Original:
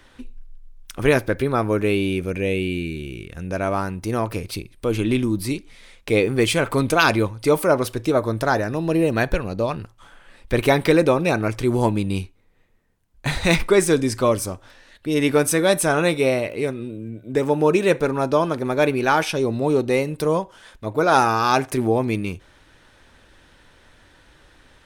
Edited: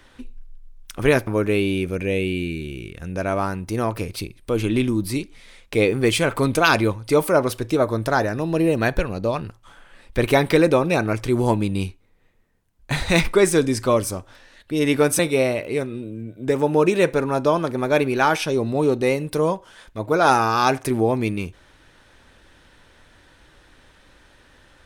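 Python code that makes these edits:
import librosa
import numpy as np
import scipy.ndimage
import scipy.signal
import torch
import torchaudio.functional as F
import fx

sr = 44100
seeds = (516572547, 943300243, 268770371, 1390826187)

y = fx.edit(x, sr, fx.cut(start_s=1.27, length_s=0.35),
    fx.cut(start_s=15.54, length_s=0.52), tone=tone)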